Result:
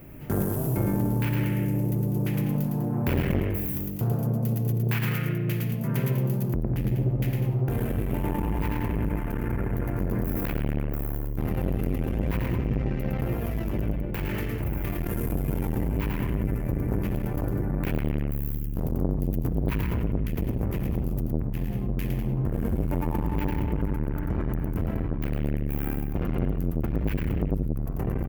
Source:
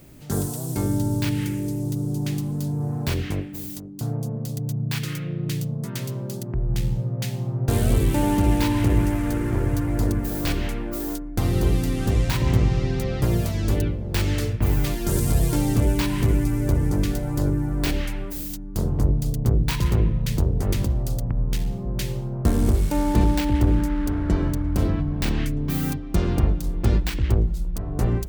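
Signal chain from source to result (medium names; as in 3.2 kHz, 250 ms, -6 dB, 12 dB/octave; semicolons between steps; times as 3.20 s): high-order bell 5.7 kHz -15.5 dB; de-hum 146.4 Hz, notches 33; peak limiter -16.5 dBFS, peak gain reduction 10 dB; gain riding 2 s; loudspeakers at several distances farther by 37 m -4 dB, 68 m -10 dB; on a send at -12 dB: reverberation RT60 0.95 s, pre-delay 47 ms; on the sum: transformer saturation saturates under 340 Hz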